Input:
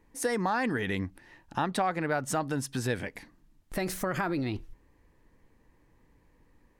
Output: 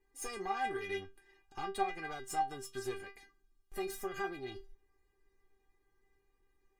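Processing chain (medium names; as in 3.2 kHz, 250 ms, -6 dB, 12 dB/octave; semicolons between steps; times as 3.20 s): valve stage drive 23 dB, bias 0.75; inharmonic resonator 390 Hz, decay 0.23 s, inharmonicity 0.002; trim +10 dB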